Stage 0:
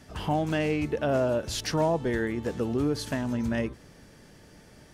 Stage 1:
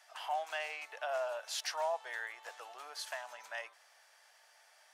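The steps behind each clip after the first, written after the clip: elliptic high-pass 690 Hz, stop band 80 dB; trim -5 dB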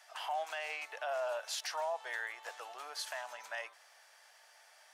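peak limiter -31 dBFS, peak gain reduction 6 dB; trim +2.5 dB

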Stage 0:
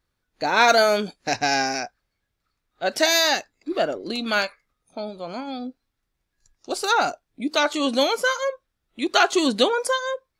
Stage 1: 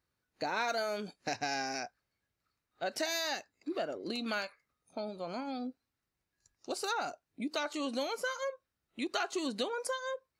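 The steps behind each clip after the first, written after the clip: high-pass 70 Hz; band-stop 3.4 kHz, Q 12; compression 3:1, threshold -29 dBFS, peak gain reduction 13 dB; trim -5.5 dB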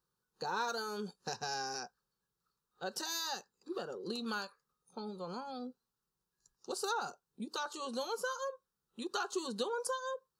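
static phaser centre 430 Hz, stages 8; trim +1 dB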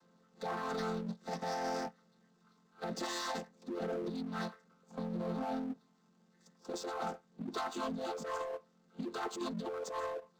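vocoder on a held chord major triad, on F3; compressor with a negative ratio -43 dBFS, ratio -1; power-law waveshaper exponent 0.7; trim +1.5 dB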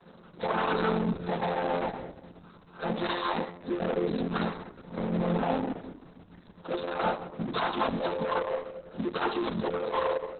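companding laws mixed up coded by mu; reverberation RT60 1.5 s, pre-delay 6 ms, DRR 7.5 dB; trim +6.5 dB; Opus 6 kbps 48 kHz

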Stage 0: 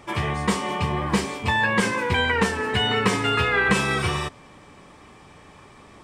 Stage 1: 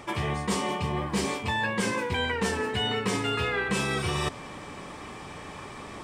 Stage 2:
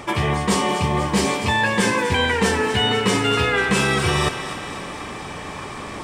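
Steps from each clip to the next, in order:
dynamic bell 1.5 kHz, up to -5 dB, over -32 dBFS, Q 0.74; reverse; compression 5:1, threshold -33 dBFS, peak gain reduction 15.5 dB; reverse; bass shelf 140 Hz -3.5 dB; trim +7.5 dB
thinning echo 245 ms, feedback 63%, high-pass 420 Hz, level -10.5 dB; trim +8.5 dB

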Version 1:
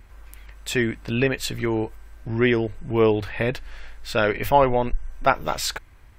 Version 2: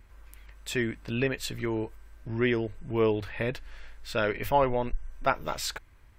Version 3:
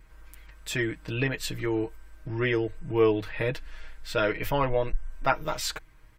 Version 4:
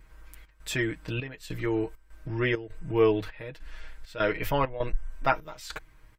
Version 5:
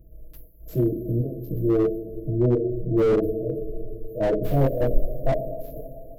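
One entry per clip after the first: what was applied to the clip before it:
band-stop 760 Hz, Q 13; trim -6.5 dB
comb 6.4 ms, depth 75%
trance gate "xxx.xxxx..xxx." 100 bpm -12 dB
two-slope reverb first 0.36 s, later 3.3 s, from -18 dB, DRR -8.5 dB; FFT band-reject 720–11000 Hz; slew-rate limiter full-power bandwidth 60 Hz

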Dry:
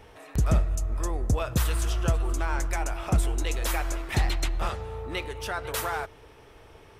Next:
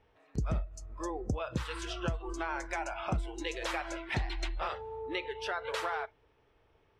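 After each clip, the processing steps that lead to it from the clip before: spectral noise reduction 17 dB; low-pass 4.3 kHz 12 dB/octave; compression 4:1, threshold -31 dBFS, peak gain reduction 11 dB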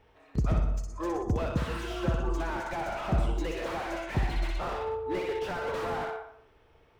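flutter echo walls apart 10.5 m, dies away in 0.47 s; reverberation RT60 0.55 s, pre-delay 102 ms, DRR 11 dB; slew-rate limiter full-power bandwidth 13 Hz; trim +5.5 dB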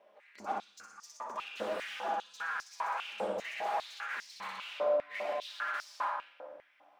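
ring modulator 150 Hz; simulated room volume 1300 m³, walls mixed, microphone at 1.3 m; step-sequenced high-pass 5 Hz 550–5300 Hz; trim -4 dB

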